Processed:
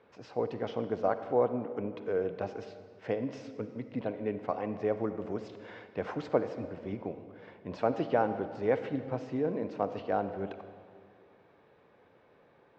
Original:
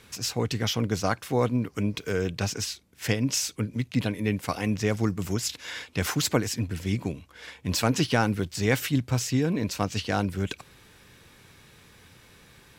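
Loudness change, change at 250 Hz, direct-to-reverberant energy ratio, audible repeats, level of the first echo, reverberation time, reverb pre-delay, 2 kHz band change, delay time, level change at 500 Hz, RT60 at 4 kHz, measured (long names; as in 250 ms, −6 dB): −6.0 dB, −8.5 dB, 10.0 dB, no echo audible, no echo audible, 2.0 s, 39 ms, −12.5 dB, no echo audible, 0.0 dB, 1.6 s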